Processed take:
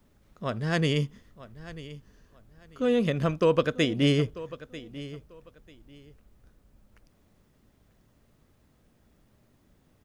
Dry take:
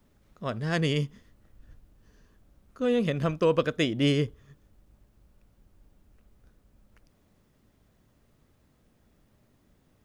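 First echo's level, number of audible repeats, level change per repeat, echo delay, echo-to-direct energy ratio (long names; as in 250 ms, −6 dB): −16.5 dB, 2, −13.0 dB, 942 ms, −16.5 dB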